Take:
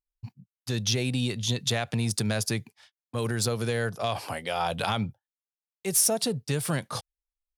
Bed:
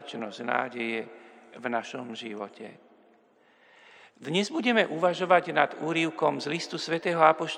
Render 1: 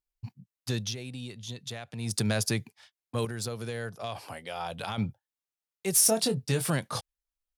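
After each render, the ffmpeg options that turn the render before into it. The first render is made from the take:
ffmpeg -i in.wav -filter_complex "[0:a]asettb=1/sr,asplit=3[link_01][link_02][link_03];[link_01]atrim=end=6.004[link_04];[link_02]atrim=start=6:end=6.7,asetpts=PTS-STARTPTS,afade=type=in:duration=0.004:curve=qsin,afade=type=out:start_time=0.696:duration=0.004:curve=qsin,asplit=2[link_05][link_06];[link_06]adelay=23,volume=-8dB[link_07];[link_05][link_07]amix=inputs=2:normalize=0,atrim=end_sample=30870[link_08];[link_03]atrim=start=6.696[link_09];[link_04][link_08]acrossfade=duration=0.004:curve1=hsin:curve2=qsin[link_10];[link_10][link_09]acrossfade=duration=0.004:curve1=qsin:curve2=hsin,asplit=5[link_11][link_12][link_13][link_14][link_15];[link_11]atrim=end=0.95,asetpts=PTS-STARTPTS,afade=type=out:start_time=0.69:duration=0.26:silence=0.251189[link_16];[link_12]atrim=start=0.95:end=1.96,asetpts=PTS-STARTPTS,volume=-12dB[link_17];[link_13]atrim=start=1.96:end=3.252,asetpts=PTS-STARTPTS,afade=type=in:duration=0.26:silence=0.251189[link_18];[link_14]atrim=start=3.248:end=4.982,asetpts=PTS-STARTPTS,volume=-7.5dB[link_19];[link_15]atrim=start=4.978[link_20];[link_16][link_17][link_18]concat=n=3:v=0:a=1[link_21];[link_21][link_19]acrossfade=duration=0.004:curve1=hsin:curve2=hsin[link_22];[link_22][link_20]acrossfade=duration=0.004:curve1=hsin:curve2=hsin" out.wav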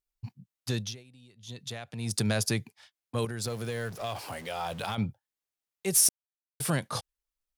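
ffmpeg -i in.wav -filter_complex "[0:a]asettb=1/sr,asplit=3[link_01][link_02][link_03];[link_01]atrim=end=3.444[link_04];[link_02]atrim=start=3.44:end=4.95,asetpts=PTS-STARTPTS,afade=type=in:duration=0.004:curve=qsin,afade=type=out:start_time=1.506:duration=0.004:curve=qsin,aeval=exprs='val(0)+0.5*0.00794*sgn(val(0))':channel_layout=same[link_05];[link_03]atrim=start=4.946[link_06];[link_04][link_05]acrossfade=duration=0.004:curve1=hsin:curve2=qsin[link_07];[link_07][link_06]acrossfade=duration=0.004:curve1=qsin:curve2=hsin,asplit=5[link_08][link_09][link_10][link_11][link_12];[link_08]atrim=end=1.04,asetpts=PTS-STARTPTS,afade=type=out:start_time=0.8:duration=0.24:silence=0.158489[link_13];[link_09]atrim=start=1.04:end=1.36,asetpts=PTS-STARTPTS,volume=-16dB[link_14];[link_10]atrim=start=1.36:end=6.09,asetpts=PTS-STARTPTS,afade=type=in:duration=0.24:silence=0.158489,afade=type=out:start_time=4.726:duration=0.004:curve=hsin[link_15];[link_11]atrim=start=6.09:end=6.6,asetpts=PTS-STARTPTS,volume=0[link_16];[link_12]atrim=start=6.6,asetpts=PTS-STARTPTS,afade=type=in:duration=0.004:curve=hsin[link_17];[link_13][link_14][link_15][link_16][link_17]concat=n=5:v=0:a=1" out.wav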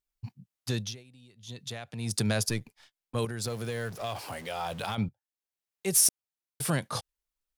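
ffmpeg -i in.wav -filter_complex "[0:a]asettb=1/sr,asplit=3[link_01][link_02][link_03];[link_01]atrim=end=2.494[link_04];[link_02]atrim=start=2.49:end=3.15,asetpts=PTS-STARTPTS,afade=type=in:duration=0.004:curve=qsin,afade=type=out:start_time=0.656:duration=0.004:curve=qsin,aeval=exprs='if(lt(val(0),0),0.447*val(0),val(0))':channel_layout=same[link_05];[link_03]atrim=start=3.146[link_06];[link_04][link_05]acrossfade=duration=0.004:curve1=hsin:curve2=qsin[link_07];[link_07][link_06]acrossfade=duration=0.004:curve1=qsin:curve2=hsin,asplit=2[link_08][link_09];[link_08]atrim=end=5.09,asetpts=PTS-STARTPTS,afade=type=out:start_time=5.086:duration=0.004:curve=hsin:silence=0.158489[link_10];[link_09]atrim=start=5.09,asetpts=PTS-STARTPTS,afade=type=in:duration=0.77:silence=0.158489[link_11];[link_10][link_11]concat=n=2:v=0:a=1" out.wav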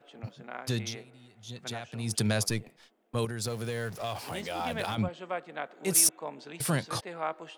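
ffmpeg -i in.wav -i bed.wav -filter_complex "[1:a]volume=-14dB[link_01];[0:a][link_01]amix=inputs=2:normalize=0" out.wav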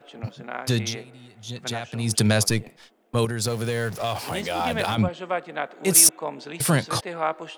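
ffmpeg -i in.wav -af "volume=8dB" out.wav

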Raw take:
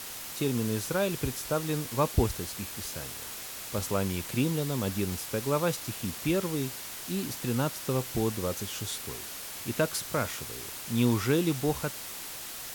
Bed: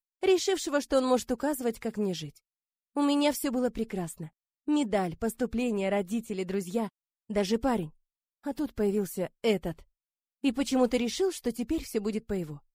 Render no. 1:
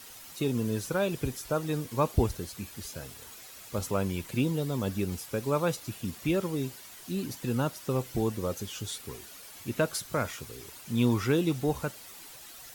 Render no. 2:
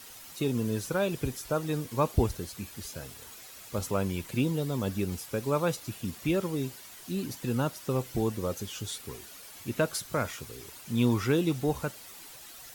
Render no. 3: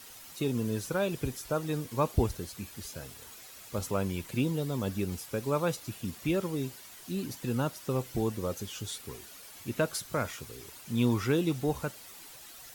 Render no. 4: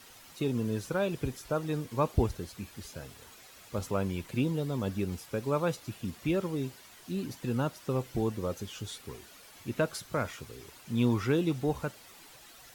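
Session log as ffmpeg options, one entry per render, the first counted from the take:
ffmpeg -i in.wav -af "afftdn=noise_reduction=10:noise_floor=-41" out.wav
ffmpeg -i in.wav -af anull out.wav
ffmpeg -i in.wav -af "volume=-1.5dB" out.wav
ffmpeg -i in.wav -af "highshelf=frequency=5700:gain=-8" out.wav

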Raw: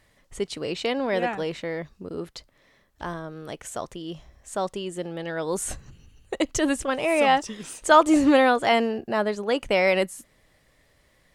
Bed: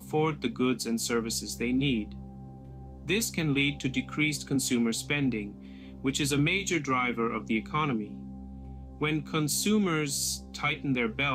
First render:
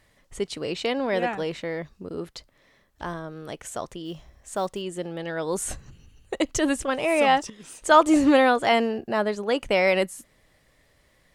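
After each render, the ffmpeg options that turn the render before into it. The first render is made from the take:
ffmpeg -i in.wav -filter_complex "[0:a]asettb=1/sr,asplit=3[link_01][link_02][link_03];[link_01]atrim=end=4.054[link_04];[link_02]atrim=start=4.05:end=4.82,asetpts=PTS-STARTPTS,afade=type=in:duration=0.004:curve=qsin,afade=type=out:start_time=0.766:duration=0.004:curve=qsin,acrusher=bits=8:mode=log:mix=0:aa=0.000001[link_05];[link_03]atrim=start=4.816[link_06];[link_04][link_05]acrossfade=duration=0.004:curve1=hsin:curve2=qsin[link_07];[link_07][link_06]acrossfade=duration=0.004:curve1=qsin:curve2=hsin,asplit=2[link_08][link_09];[link_08]atrim=end=7.5,asetpts=PTS-STARTPTS,afade=type=out:start_time=7.496:duration=0.004:curve=hsin:silence=0.251189[link_10];[link_09]atrim=start=7.5,asetpts=PTS-STARTPTS,afade=type=in:duration=0.47:silence=0.251189[link_11];[link_10][link_11]concat=n=2:v=0:a=1" out.wav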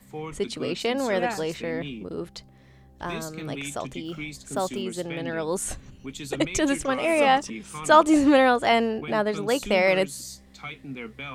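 ffmpeg -i in.wav -i bed.wav -filter_complex "[1:a]volume=-8.5dB[link_01];[0:a][link_01]amix=inputs=2:normalize=0" out.wav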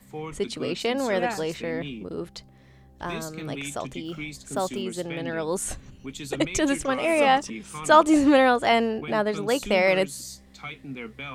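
ffmpeg -i in.wav -af anull out.wav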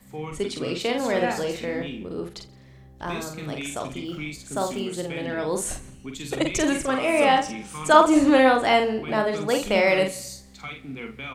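ffmpeg -i in.wav -filter_complex "[0:a]asplit=2[link_01][link_02];[link_02]adelay=46,volume=-5dB[link_03];[link_01][link_03]amix=inputs=2:normalize=0,aecho=1:1:84|168|252|336:0.112|0.0595|0.0315|0.0167" out.wav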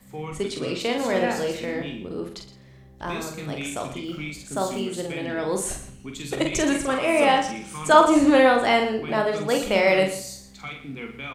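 ffmpeg -i in.wav -filter_complex "[0:a]asplit=2[link_01][link_02];[link_02]adelay=21,volume=-12dB[link_03];[link_01][link_03]amix=inputs=2:normalize=0,aecho=1:1:117:0.224" out.wav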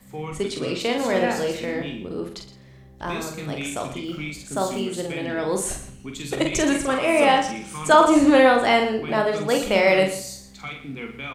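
ffmpeg -i in.wav -af "volume=1.5dB,alimiter=limit=-3dB:level=0:latency=1" out.wav

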